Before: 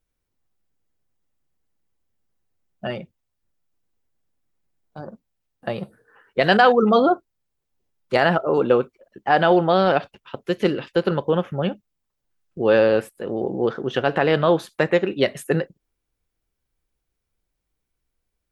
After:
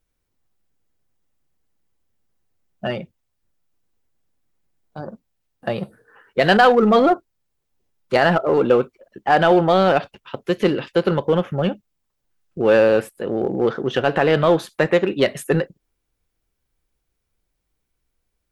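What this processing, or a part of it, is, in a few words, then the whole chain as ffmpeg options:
parallel distortion: -filter_complex "[0:a]asplit=2[a][b];[b]asoftclip=type=hard:threshold=-19.5dB,volume=-6dB[c];[a][c]amix=inputs=2:normalize=0"

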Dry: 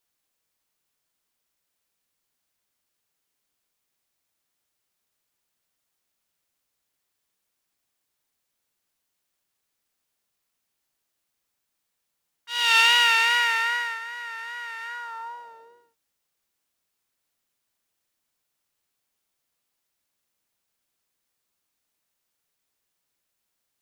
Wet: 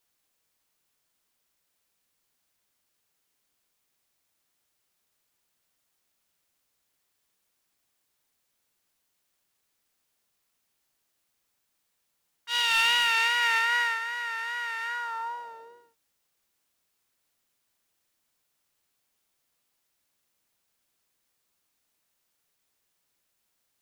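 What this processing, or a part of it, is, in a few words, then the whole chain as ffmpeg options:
clipper into limiter: -af "asoftclip=type=hard:threshold=-10.5dB,alimiter=limit=-18dB:level=0:latency=1:release=96,volume=2.5dB"

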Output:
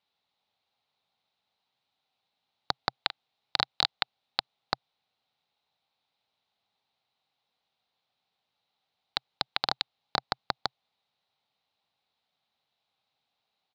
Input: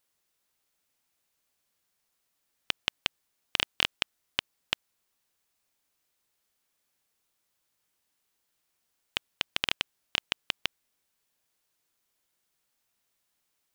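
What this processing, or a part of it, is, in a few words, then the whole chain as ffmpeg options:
ring modulator pedal into a guitar cabinet: -filter_complex "[0:a]asplit=3[a][b][c];[a]afade=t=out:st=2.96:d=0.02[d];[b]asplit=2[e][f];[f]adelay=40,volume=-13dB[g];[e][g]amix=inputs=2:normalize=0,afade=t=in:st=2.96:d=0.02,afade=t=out:st=3.62:d=0.02[h];[c]afade=t=in:st=3.62:d=0.02[i];[d][h][i]amix=inputs=3:normalize=0,aeval=exprs='val(0)*sgn(sin(2*PI*1500*n/s))':c=same,highpass=90,equalizer=f=130:t=q:w=4:g=3,equalizer=f=330:t=q:w=4:g=-7,equalizer=f=790:t=q:w=4:g=10,equalizer=f=1.7k:t=q:w=4:g=-6,equalizer=f=3.9k:t=q:w=4:g=9,lowpass=f=4.2k:w=0.5412,lowpass=f=4.2k:w=1.3066"

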